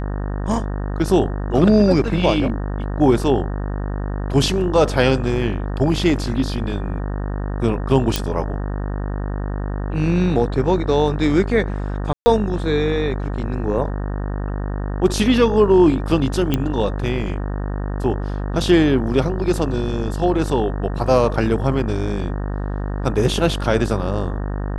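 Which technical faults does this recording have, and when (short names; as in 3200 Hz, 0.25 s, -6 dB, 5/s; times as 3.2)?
buzz 50 Hz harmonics 37 -24 dBFS
8.16 pop
12.13–12.26 gap 0.13 s
16.54 pop -6 dBFS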